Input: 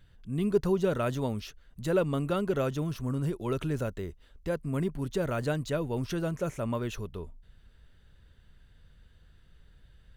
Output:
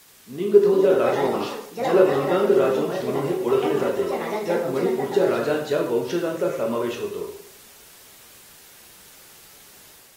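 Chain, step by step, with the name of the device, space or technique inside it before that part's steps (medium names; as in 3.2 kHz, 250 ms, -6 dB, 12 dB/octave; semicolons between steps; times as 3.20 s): ever faster or slower copies 453 ms, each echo +6 st, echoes 2, each echo -6 dB; filmed off a television (band-pass 260–6100 Hz; peaking EQ 410 Hz +10 dB 0.44 oct; reverberation RT60 0.60 s, pre-delay 15 ms, DRR 0 dB; white noise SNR 26 dB; level rider gain up to 3.5 dB; AAC 48 kbps 48 kHz)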